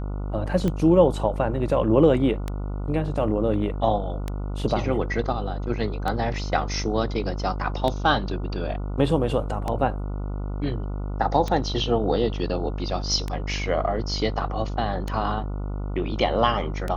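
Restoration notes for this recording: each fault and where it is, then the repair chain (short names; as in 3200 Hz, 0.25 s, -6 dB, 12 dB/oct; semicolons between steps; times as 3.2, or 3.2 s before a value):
buzz 50 Hz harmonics 29 -29 dBFS
tick 33 1/3 rpm -14 dBFS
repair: de-click; de-hum 50 Hz, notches 29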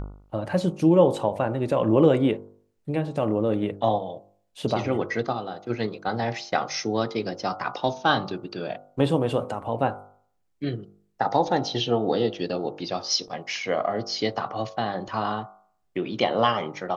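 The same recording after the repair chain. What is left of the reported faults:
none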